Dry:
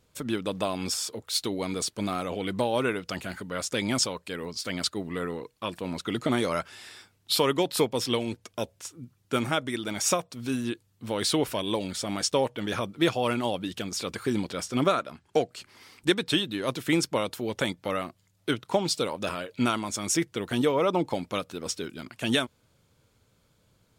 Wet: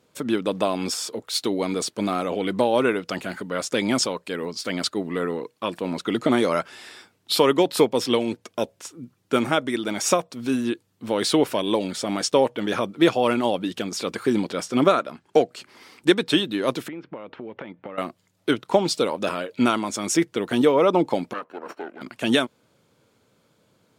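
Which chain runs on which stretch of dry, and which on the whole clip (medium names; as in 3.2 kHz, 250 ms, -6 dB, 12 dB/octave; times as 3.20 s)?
16.88–17.98 s: low-pass 2.6 kHz 24 dB/octave + compression 16:1, threshold -37 dBFS
21.33–22.01 s: comb filter that takes the minimum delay 0.71 ms + three-band isolator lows -20 dB, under 300 Hz, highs -23 dB, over 2.2 kHz
whole clip: high-pass 230 Hz 12 dB/octave; tilt EQ -1.5 dB/octave; trim +5.5 dB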